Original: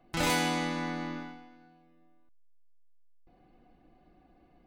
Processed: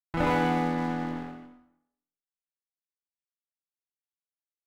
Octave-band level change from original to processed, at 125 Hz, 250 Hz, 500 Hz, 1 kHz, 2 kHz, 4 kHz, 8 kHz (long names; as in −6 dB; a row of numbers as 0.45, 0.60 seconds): +5.0 dB, +5.0 dB, +5.5 dB, +5.0 dB, −0.5 dB, −8.0 dB, below −10 dB